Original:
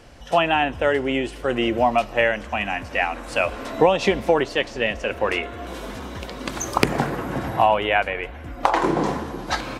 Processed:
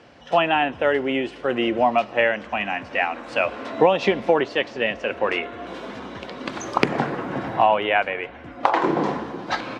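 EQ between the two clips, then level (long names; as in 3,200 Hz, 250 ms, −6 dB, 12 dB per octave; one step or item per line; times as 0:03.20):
band-pass filter 150–4,100 Hz
0.0 dB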